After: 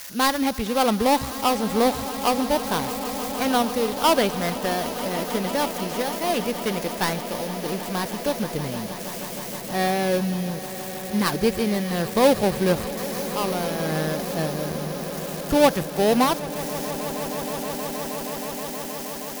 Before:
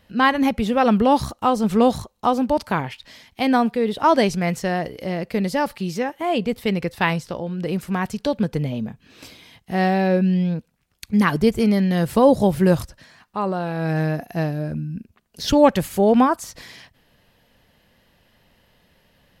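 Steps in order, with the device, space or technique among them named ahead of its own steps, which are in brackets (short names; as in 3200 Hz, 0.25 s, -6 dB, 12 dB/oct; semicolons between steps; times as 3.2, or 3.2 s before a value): budget class-D amplifier (switching dead time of 0.18 ms; switching spikes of -18.5 dBFS); bell 160 Hz -6 dB 1.7 oct; swelling echo 0.158 s, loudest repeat 8, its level -17.5 dB; gain -1.5 dB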